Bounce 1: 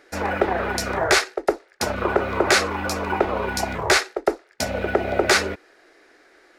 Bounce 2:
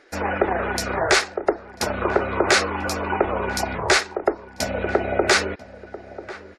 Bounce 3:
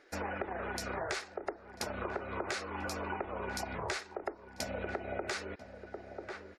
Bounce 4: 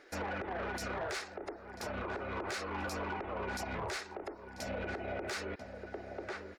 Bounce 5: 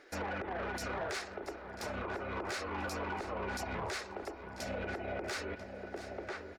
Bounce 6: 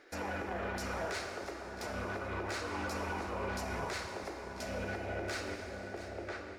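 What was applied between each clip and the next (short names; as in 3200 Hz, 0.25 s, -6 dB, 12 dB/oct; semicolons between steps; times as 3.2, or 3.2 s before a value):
spectral gate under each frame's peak -30 dB strong; outdoor echo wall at 170 m, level -15 dB
compressor 6:1, threshold -26 dBFS, peak gain reduction 13 dB; gain -8.5 dB
limiter -29.5 dBFS, peak gain reduction 9 dB; soft clip -35.5 dBFS, distortion -15 dB; gain +3.5 dB
feedback echo 0.68 s, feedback 31%, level -13 dB
plate-style reverb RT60 2.8 s, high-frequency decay 0.85×, DRR 3 dB; gain -1.5 dB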